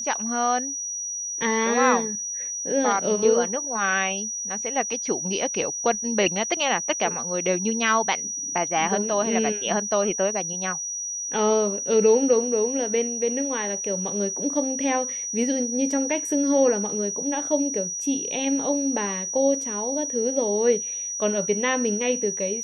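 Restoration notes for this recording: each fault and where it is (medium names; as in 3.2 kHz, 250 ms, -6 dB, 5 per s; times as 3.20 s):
whine 5.8 kHz -28 dBFS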